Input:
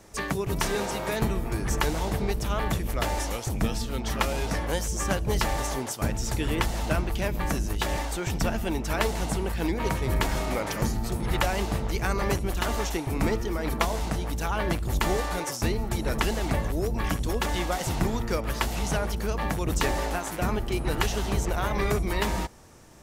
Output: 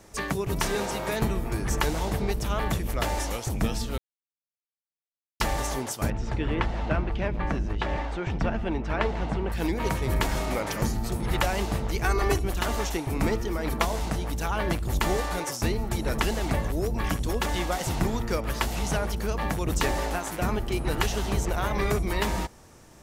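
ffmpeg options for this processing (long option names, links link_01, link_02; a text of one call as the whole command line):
ffmpeg -i in.wav -filter_complex "[0:a]asettb=1/sr,asplit=3[link_01][link_02][link_03];[link_01]atrim=end=6.104[link_04];[link_02]atrim=start=6.1:end=9.52,asetpts=PTS-STARTPTS,afade=type=in:duration=0.004:curve=qsin,afade=type=out:start_time=3.416:duration=0.004:curve=qsin,lowpass=2600[link_05];[link_03]atrim=start=9.516[link_06];[link_04][link_05]acrossfade=duration=0.004:curve1=hsin:curve2=qsin[link_07];[link_07][link_06]acrossfade=duration=0.004:curve1=qsin:curve2=hsin,asettb=1/sr,asplit=3[link_08][link_09][link_10];[link_08]atrim=end=12.044[link_11];[link_09]atrim=start=12.04:end=12.45,asetpts=PTS-STARTPTS,afade=type=in:duration=0.004:curve=qsin,afade=type=out:start_time=0.406:duration=0.004:curve=qsin,aecho=1:1:2.7:0.65,atrim=end_sample=18081[link_12];[link_10]atrim=start=12.446[link_13];[link_11][link_12]acrossfade=duration=0.004:curve1=hsin:curve2=qsin[link_14];[link_14][link_13]acrossfade=duration=0.004:curve1=qsin:curve2=hsin,asplit=3[link_15][link_16][link_17];[link_15]atrim=end=3.98,asetpts=PTS-STARTPTS,afade=type=out:start_time=3.976:duration=0.004:curve=hsin[link_18];[link_16]atrim=start=3.98:end=5.4,asetpts=PTS-STARTPTS,volume=0[link_19];[link_17]atrim=start=5.4,asetpts=PTS-STARTPTS,afade=type=in:duration=0.004:curve=hsin[link_20];[link_18][link_19][link_20]concat=n=3:v=0:a=1" out.wav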